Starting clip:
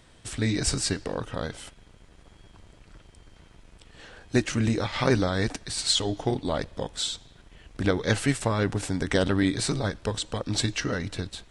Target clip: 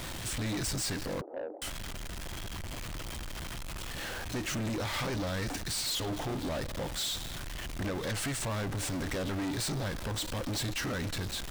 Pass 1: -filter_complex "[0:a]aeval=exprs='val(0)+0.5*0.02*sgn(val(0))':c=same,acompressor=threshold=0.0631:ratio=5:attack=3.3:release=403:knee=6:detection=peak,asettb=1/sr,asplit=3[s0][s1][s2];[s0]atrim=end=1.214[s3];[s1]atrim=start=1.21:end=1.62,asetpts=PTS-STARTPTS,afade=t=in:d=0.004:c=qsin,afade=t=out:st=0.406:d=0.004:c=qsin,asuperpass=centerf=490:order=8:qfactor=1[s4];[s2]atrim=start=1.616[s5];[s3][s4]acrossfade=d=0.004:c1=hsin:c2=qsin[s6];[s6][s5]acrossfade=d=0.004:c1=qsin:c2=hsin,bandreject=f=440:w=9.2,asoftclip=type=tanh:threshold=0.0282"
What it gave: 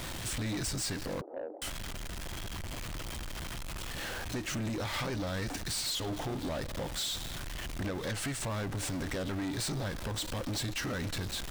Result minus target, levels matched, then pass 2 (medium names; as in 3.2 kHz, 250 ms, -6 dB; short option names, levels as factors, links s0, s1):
compression: peak gain reduction +5 dB
-filter_complex "[0:a]aeval=exprs='val(0)+0.5*0.02*sgn(val(0))':c=same,acompressor=threshold=0.133:ratio=5:attack=3.3:release=403:knee=6:detection=peak,asettb=1/sr,asplit=3[s0][s1][s2];[s0]atrim=end=1.214[s3];[s1]atrim=start=1.21:end=1.62,asetpts=PTS-STARTPTS,afade=t=in:d=0.004:c=qsin,afade=t=out:st=0.406:d=0.004:c=qsin,asuperpass=centerf=490:order=8:qfactor=1[s4];[s2]atrim=start=1.616[s5];[s3][s4]acrossfade=d=0.004:c1=hsin:c2=qsin[s6];[s6][s5]acrossfade=d=0.004:c1=qsin:c2=hsin,bandreject=f=440:w=9.2,asoftclip=type=tanh:threshold=0.0282"